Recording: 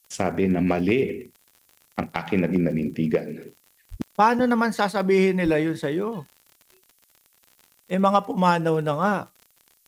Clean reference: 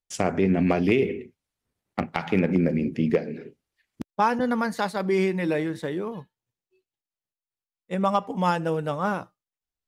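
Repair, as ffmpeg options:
ffmpeg -i in.wav -filter_complex "[0:a]adeclick=threshold=4,asplit=3[link_01][link_02][link_03];[link_01]afade=type=out:start_time=3.9:duration=0.02[link_04];[link_02]highpass=frequency=140:width=0.5412,highpass=frequency=140:width=1.3066,afade=type=in:start_time=3.9:duration=0.02,afade=type=out:start_time=4.02:duration=0.02[link_05];[link_03]afade=type=in:start_time=4.02:duration=0.02[link_06];[link_04][link_05][link_06]amix=inputs=3:normalize=0,asplit=3[link_07][link_08][link_09];[link_07]afade=type=out:start_time=5.44:duration=0.02[link_10];[link_08]highpass=frequency=140:width=0.5412,highpass=frequency=140:width=1.3066,afade=type=in:start_time=5.44:duration=0.02,afade=type=out:start_time=5.56:duration=0.02[link_11];[link_09]afade=type=in:start_time=5.56:duration=0.02[link_12];[link_10][link_11][link_12]amix=inputs=3:normalize=0,agate=range=-21dB:threshold=-55dB,asetnsamples=nb_out_samples=441:pad=0,asendcmd='3.76 volume volume -4dB',volume=0dB" out.wav

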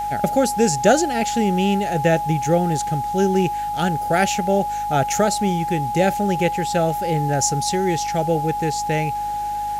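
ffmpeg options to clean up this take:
ffmpeg -i in.wav -af "bandreject=frequency=51.7:width_type=h:width=4,bandreject=frequency=103.4:width_type=h:width=4,bandreject=frequency=155.1:width_type=h:width=4,bandreject=frequency=206.8:width_type=h:width=4,bandreject=frequency=258.5:width_type=h:width=4,bandreject=frequency=310.2:width_type=h:width=4,bandreject=frequency=830:width=30,afwtdn=0.0056" out.wav

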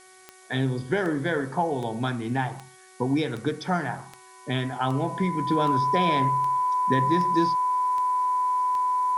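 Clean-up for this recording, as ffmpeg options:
ffmpeg -i in.wav -af "adeclick=threshold=4,bandreject=frequency=373.7:width_type=h:width=4,bandreject=frequency=747.4:width_type=h:width=4,bandreject=frequency=1121.1:width_type=h:width=4,bandreject=frequency=1494.8:width_type=h:width=4,bandreject=frequency=1868.5:width_type=h:width=4,bandreject=frequency=2242.2:width_type=h:width=4,bandreject=frequency=1000:width=30,afftdn=noise_reduction=22:noise_floor=-50" out.wav

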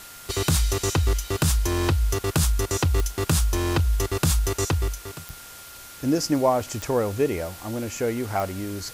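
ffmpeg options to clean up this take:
ffmpeg -i in.wav -af "adeclick=threshold=4,bandreject=frequency=1400:width=30,afftdn=noise_reduction=26:noise_floor=-42" out.wav

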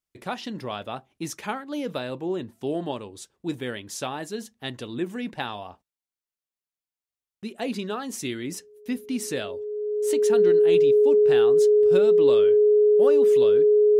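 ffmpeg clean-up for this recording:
ffmpeg -i in.wav -af "bandreject=frequency=420:width=30" out.wav

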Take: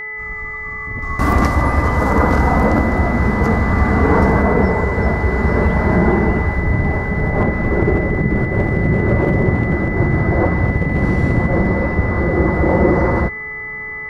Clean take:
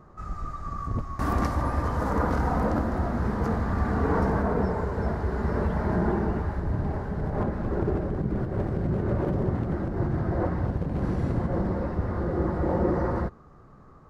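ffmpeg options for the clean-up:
ffmpeg -i in.wav -af "bandreject=frequency=429.5:width_type=h:width=4,bandreject=frequency=859:width_type=h:width=4,bandreject=frequency=1288.5:width_type=h:width=4,bandreject=frequency=1718:width_type=h:width=4,bandreject=frequency=2147.5:width_type=h:width=4,bandreject=frequency=2000:width=30,asetnsamples=nb_out_samples=441:pad=0,asendcmd='1.02 volume volume -11dB',volume=0dB" out.wav

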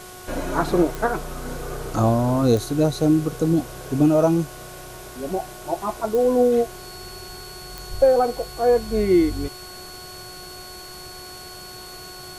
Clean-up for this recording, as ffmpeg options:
ffmpeg -i in.wav -af "adeclick=threshold=4,bandreject=frequency=365.7:width_type=h:width=4,bandreject=frequency=731.4:width_type=h:width=4,bandreject=frequency=1097.1:width_type=h:width=4,bandreject=frequency=1462.8:width_type=h:width=4,bandreject=frequency=4400:width=30,afwtdn=0.0079" out.wav

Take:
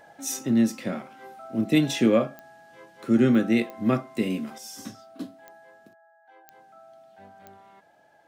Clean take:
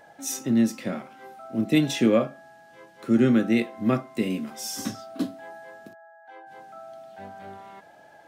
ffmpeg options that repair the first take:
ffmpeg -i in.wav -af "adeclick=threshold=4,asetnsamples=nb_out_samples=441:pad=0,asendcmd='4.58 volume volume 8dB',volume=0dB" out.wav

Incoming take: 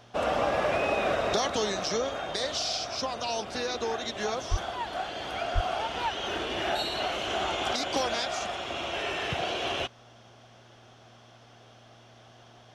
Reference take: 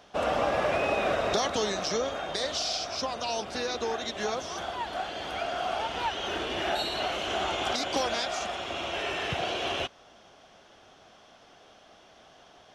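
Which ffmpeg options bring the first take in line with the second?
ffmpeg -i in.wav -filter_complex "[0:a]bandreject=frequency=117.8:width_type=h:width=4,bandreject=frequency=235.6:width_type=h:width=4,bandreject=frequency=353.4:width_type=h:width=4,asplit=3[link_01][link_02][link_03];[link_01]afade=type=out:start_time=4.5:duration=0.02[link_04];[link_02]highpass=frequency=140:width=0.5412,highpass=frequency=140:width=1.3066,afade=type=in:start_time=4.5:duration=0.02,afade=type=out:start_time=4.62:duration=0.02[link_05];[link_03]afade=type=in:start_time=4.62:duration=0.02[link_06];[link_04][link_05][link_06]amix=inputs=3:normalize=0,asplit=3[link_07][link_08][link_09];[link_07]afade=type=out:start_time=5.54:duration=0.02[link_10];[link_08]highpass=frequency=140:width=0.5412,highpass=frequency=140:width=1.3066,afade=type=in:start_time=5.54:duration=0.02,afade=type=out:start_time=5.66:duration=0.02[link_11];[link_09]afade=type=in:start_time=5.66:duration=0.02[link_12];[link_10][link_11][link_12]amix=inputs=3:normalize=0" out.wav

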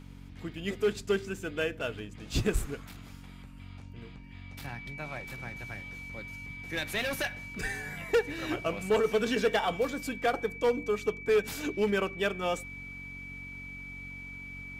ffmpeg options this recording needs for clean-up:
ffmpeg -i in.wav -af "bandreject=frequency=46.4:width_type=h:width=4,bandreject=frequency=92.8:width_type=h:width=4,bandreject=frequency=139.2:width_type=h:width=4,bandreject=frequency=185.6:width_type=h:width=4,bandreject=frequency=232:width_type=h:width=4,bandreject=frequency=278.4:width_type=h:width=4,bandreject=frequency=2300:width=30" out.wav

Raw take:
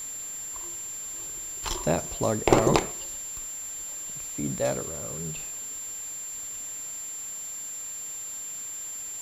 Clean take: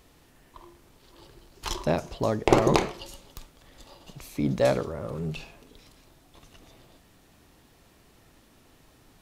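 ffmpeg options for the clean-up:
ffmpeg -i in.wav -af "bandreject=frequency=7300:width=30,afwtdn=0.005,asetnsamples=nb_out_samples=441:pad=0,asendcmd='2.79 volume volume 5dB',volume=0dB" out.wav

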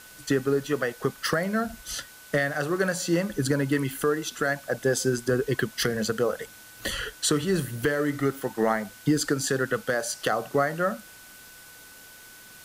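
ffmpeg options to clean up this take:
ffmpeg -i in.wav -af "bandreject=frequency=1500:width=30,afwtdn=0.004" out.wav

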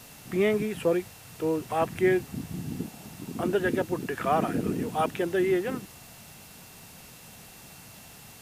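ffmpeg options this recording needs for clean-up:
ffmpeg -i in.wav -af "adeclick=threshold=4,bandreject=frequency=2700:width=30,afwtdn=0.0035" out.wav

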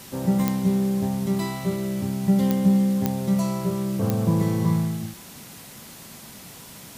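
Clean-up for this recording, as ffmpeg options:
ffmpeg -i in.wav -af "adeclick=threshold=4,afftdn=noise_reduction=26:noise_floor=-43" out.wav

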